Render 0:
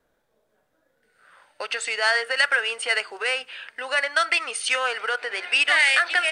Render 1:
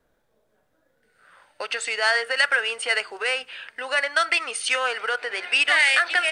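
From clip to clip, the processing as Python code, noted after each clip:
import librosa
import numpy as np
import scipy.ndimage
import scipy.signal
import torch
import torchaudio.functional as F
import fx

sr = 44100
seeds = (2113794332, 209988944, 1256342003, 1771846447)

y = fx.low_shelf(x, sr, hz=210.0, db=5.0)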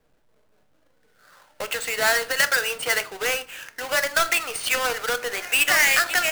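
y = fx.halfwave_hold(x, sr)
y = fx.room_shoebox(y, sr, seeds[0], volume_m3=270.0, walls='furnished', distance_m=0.48)
y = F.gain(torch.from_numpy(y), -3.5).numpy()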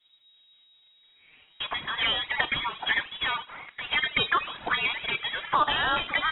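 y = fx.env_flanger(x, sr, rest_ms=6.7, full_db=-17.0)
y = fx.freq_invert(y, sr, carrier_hz=3800)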